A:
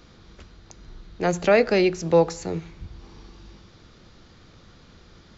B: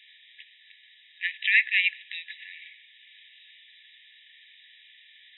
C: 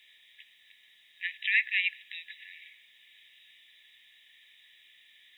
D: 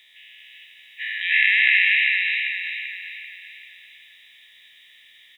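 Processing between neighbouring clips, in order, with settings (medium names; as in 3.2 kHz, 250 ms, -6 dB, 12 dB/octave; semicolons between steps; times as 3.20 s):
FFT band-pass 1.7–3.9 kHz; trim +8 dB
bit crusher 11-bit; trim -5 dB
every event in the spectrogram widened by 480 ms; feedback delay 389 ms, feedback 46%, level -4 dB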